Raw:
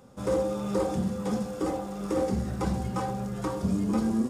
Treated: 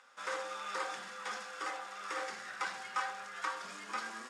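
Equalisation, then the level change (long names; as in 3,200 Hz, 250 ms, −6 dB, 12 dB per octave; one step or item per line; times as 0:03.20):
high-pass with resonance 1,600 Hz, resonance Q 2
high-frequency loss of the air 74 metres
+2.5 dB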